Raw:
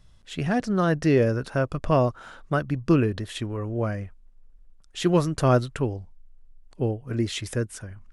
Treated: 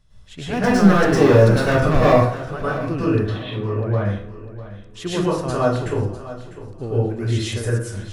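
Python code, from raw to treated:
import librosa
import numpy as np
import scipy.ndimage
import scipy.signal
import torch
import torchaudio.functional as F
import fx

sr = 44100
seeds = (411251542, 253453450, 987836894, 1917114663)

p1 = fx.cheby1_bandpass(x, sr, low_hz=110.0, high_hz=3800.0, order=5, at=(3.23, 3.95))
p2 = fx.rider(p1, sr, range_db=4, speed_s=0.5)
p3 = p1 + F.gain(torch.from_numpy(p2), 2.0).numpy()
p4 = fx.leveller(p3, sr, passes=3, at=(0.53, 2.14))
p5 = p4 + fx.echo_feedback(p4, sr, ms=650, feedback_pct=34, wet_db=-15, dry=0)
p6 = fx.rev_plate(p5, sr, seeds[0], rt60_s=0.61, hf_ratio=0.65, predelay_ms=95, drr_db=-9.5)
y = F.gain(torch.from_numpy(p6), -14.0).numpy()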